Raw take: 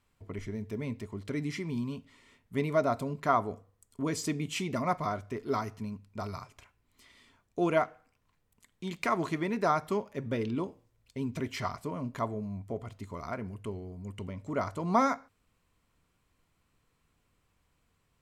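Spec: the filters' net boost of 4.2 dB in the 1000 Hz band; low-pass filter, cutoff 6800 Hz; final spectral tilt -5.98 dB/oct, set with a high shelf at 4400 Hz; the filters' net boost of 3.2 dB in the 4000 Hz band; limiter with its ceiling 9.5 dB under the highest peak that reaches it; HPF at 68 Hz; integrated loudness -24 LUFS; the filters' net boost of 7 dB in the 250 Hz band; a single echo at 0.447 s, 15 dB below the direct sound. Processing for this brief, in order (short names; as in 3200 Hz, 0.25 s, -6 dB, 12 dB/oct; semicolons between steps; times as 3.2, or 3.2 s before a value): HPF 68 Hz; LPF 6800 Hz; bell 250 Hz +8.5 dB; bell 1000 Hz +5 dB; bell 4000 Hz +8.5 dB; high shelf 4400 Hz -7.5 dB; limiter -18.5 dBFS; echo 0.447 s -15 dB; gain +7 dB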